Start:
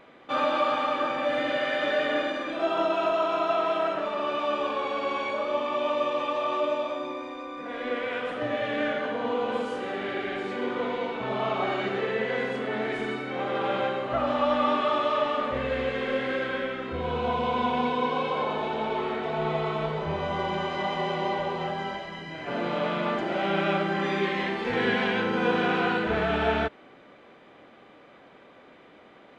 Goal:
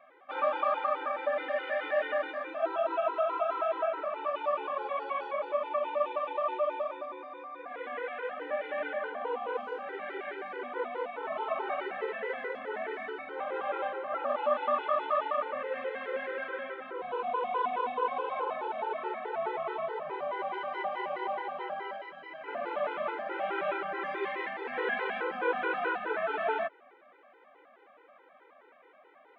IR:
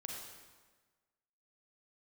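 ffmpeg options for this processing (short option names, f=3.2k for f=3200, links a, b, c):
-filter_complex "[0:a]highpass=240,lowpass=3.3k,acrossover=split=400 2400:gain=0.126 1 0.251[a][b][c];[a][b][c]amix=inputs=3:normalize=0,afftfilt=real='re*gt(sin(2*PI*4.7*pts/sr)*(1-2*mod(floor(b*sr/1024/260),2)),0)':imag='im*gt(sin(2*PI*4.7*pts/sr)*(1-2*mod(floor(b*sr/1024/260),2)),0)':win_size=1024:overlap=0.75"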